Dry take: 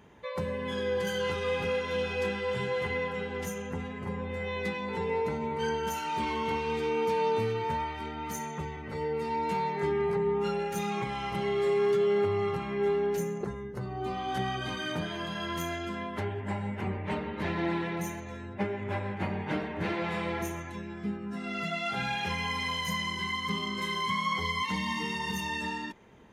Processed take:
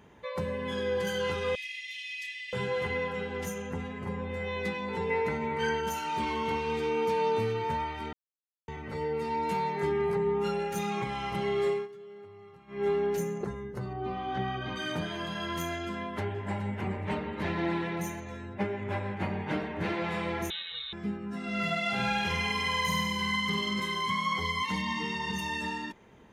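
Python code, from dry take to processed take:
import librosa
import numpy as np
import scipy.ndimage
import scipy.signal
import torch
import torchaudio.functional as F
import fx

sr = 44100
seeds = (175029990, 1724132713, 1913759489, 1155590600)

y = fx.brickwall_highpass(x, sr, low_hz=1700.0, at=(1.55, 2.53))
y = fx.peak_eq(y, sr, hz=1900.0, db=8.0, octaves=0.9, at=(5.1, 5.81))
y = fx.peak_eq(y, sr, hz=12000.0, db=5.0, octaves=0.95, at=(9.42, 10.66))
y = fx.air_absorb(y, sr, metres=230.0, at=(13.93, 14.76))
y = fx.echo_throw(y, sr, start_s=15.92, length_s=0.77, ms=420, feedback_pct=25, wet_db=-12.0)
y = fx.freq_invert(y, sr, carrier_hz=3900, at=(20.5, 20.93))
y = fx.room_flutter(y, sr, wall_m=8.4, rt60_s=0.89, at=(21.43, 23.8))
y = fx.lowpass(y, sr, hz=6500.0, slope=12, at=(24.81, 25.37), fade=0.02)
y = fx.edit(y, sr, fx.silence(start_s=8.13, length_s=0.55),
    fx.fade_down_up(start_s=11.67, length_s=1.21, db=-21.5, fade_s=0.21), tone=tone)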